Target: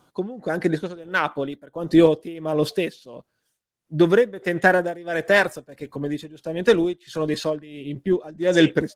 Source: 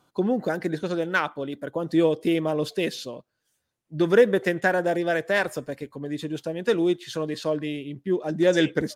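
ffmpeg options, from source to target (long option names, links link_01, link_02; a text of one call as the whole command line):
ffmpeg -i in.wav -af "tremolo=f=1.5:d=0.9,volume=6.5dB" -ar 48000 -c:a libopus -b:a 20k out.opus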